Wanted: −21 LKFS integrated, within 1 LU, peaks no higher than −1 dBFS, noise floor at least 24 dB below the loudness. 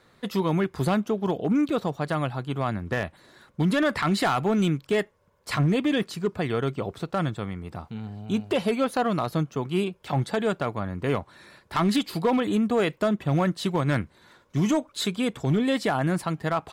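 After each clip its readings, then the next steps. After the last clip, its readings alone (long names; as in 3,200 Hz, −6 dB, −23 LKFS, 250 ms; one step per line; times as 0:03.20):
share of clipped samples 1.0%; peaks flattened at −16.5 dBFS; integrated loudness −26.0 LKFS; sample peak −16.5 dBFS; target loudness −21.0 LKFS
→ clipped peaks rebuilt −16.5 dBFS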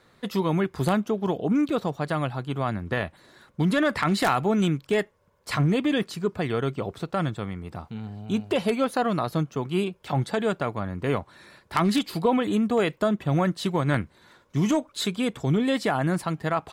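share of clipped samples 0.0%; integrated loudness −26.0 LKFS; sample peak −7.5 dBFS; target loudness −21.0 LKFS
→ level +5 dB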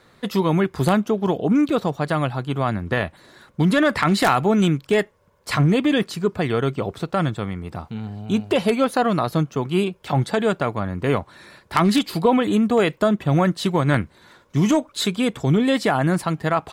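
integrated loudness −21.0 LKFS; sample peak −2.5 dBFS; background noise floor −56 dBFS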